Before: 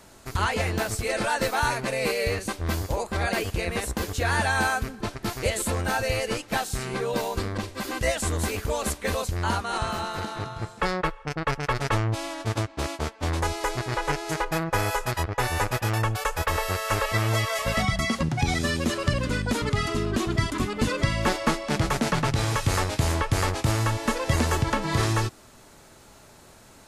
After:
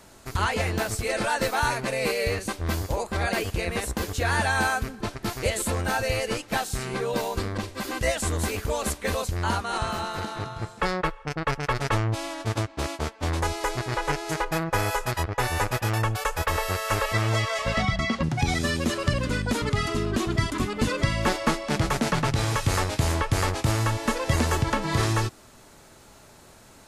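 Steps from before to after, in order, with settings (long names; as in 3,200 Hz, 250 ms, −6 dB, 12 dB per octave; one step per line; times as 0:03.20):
0:17.13–0:18.22: low-pass filter 9,800 Hz → 4,100 Hz 12 dB per octave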